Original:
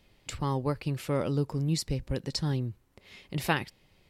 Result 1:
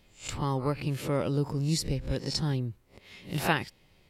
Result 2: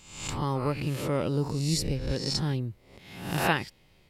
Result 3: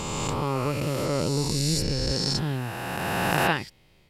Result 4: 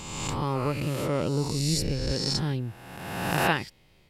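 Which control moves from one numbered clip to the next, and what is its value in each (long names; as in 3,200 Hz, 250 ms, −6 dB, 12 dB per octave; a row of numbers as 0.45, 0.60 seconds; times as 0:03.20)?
peak hold with a rise ahead of every peak, rising 60 dB in: 0.3, 0.7, 3.17, 1.49 seconds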